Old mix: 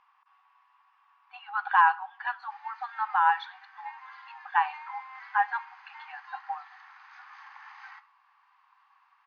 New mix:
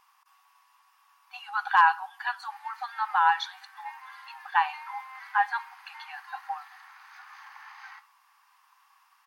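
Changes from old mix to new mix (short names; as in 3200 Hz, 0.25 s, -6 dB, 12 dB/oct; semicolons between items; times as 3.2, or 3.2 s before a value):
speech: remove LPF 2800 Hz 12 dB/oct; master: remove air absorption 130 m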